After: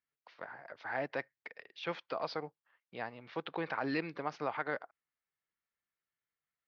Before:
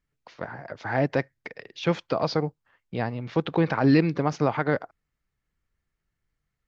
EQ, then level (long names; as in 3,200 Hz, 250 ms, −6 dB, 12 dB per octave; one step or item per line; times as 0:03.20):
high-pass filter 1,400 Hz 6 dB per octave
low-pass filter 5,200 Hz 24 dB per octave
high-shelf EQ 3,400 Hz −9.5 dB
−3.5 dB